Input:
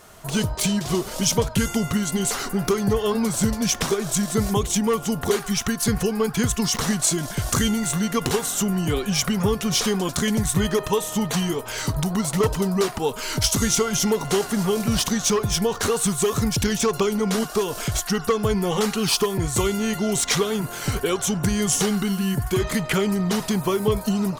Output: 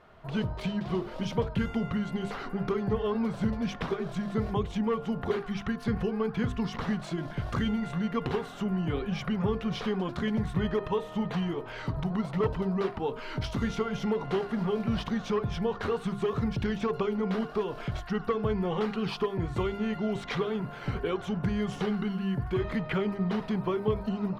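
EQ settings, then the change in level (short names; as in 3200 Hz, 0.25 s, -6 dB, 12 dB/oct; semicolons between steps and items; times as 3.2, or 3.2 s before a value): air absorption 380 m; notches 50/100/150/200/250/300/350/400/450 Hz; -5.5 dB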